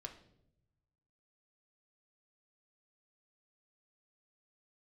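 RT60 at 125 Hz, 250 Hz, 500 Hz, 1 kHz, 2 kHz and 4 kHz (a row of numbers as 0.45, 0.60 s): 1.7, 1.2, 0.95, 0.60, 0.55, 0.55 s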